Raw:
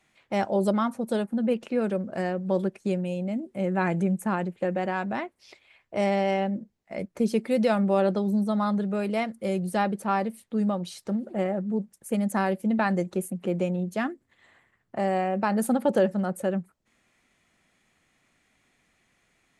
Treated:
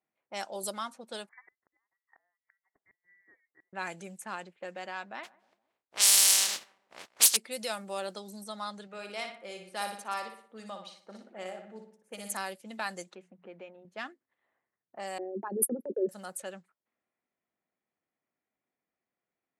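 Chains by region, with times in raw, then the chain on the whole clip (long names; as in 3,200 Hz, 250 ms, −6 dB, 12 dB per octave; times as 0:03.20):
0:01.29–0:03.73: high-pass filter 610 Hz 24 dB per octave + gate with flip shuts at −28 dBFS, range −28 dB + voice inversion scrambler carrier 2,500 Hz
0:05.23–0:07.35: compressing power law on the bin magnitudes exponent 0.19 + parametric band 1,400 Hz −2.5 dB 0.2 octaves + repeating echo 156 ms, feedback 49%, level −22 dB
0:08.87–0:12.37: low-shelf EQ 140 Hz −8.5 dB + flutter between parallel walls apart 10.2 metres, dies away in 0.57 s
0:13.15–0:13.85: high-frequency loss of the air 170 metres + downward compressor 1.5 to 1, threshold −31 dBFS + mains-hum notches 60/120/180 Hz
0:15.18–0:16.09: spectral envelope exaggerated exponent 3 + noise gate −30 dBFS, range −31 dB + low shelf with overshoot 470 Hz +9.5 dB, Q 3
whole clip: dynamic equaliser 2,100 Hz, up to −4 dB, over −43 dBFS, Q 1.5; low-pass that shuts in the quiet parts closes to 530 Hz, open at −20 dBFS; first difference; level +8.5 dB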